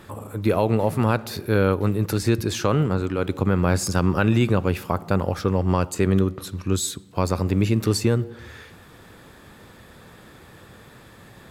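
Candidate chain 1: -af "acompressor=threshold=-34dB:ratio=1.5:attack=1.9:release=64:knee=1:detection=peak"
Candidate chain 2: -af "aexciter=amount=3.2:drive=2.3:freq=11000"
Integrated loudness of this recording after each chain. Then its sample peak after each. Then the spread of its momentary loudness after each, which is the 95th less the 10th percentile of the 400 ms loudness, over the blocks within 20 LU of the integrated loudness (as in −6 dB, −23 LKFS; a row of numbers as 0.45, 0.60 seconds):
−29.5, −22.5 LKFS; −12.5, −5.0 dBFS; 19, 6 LU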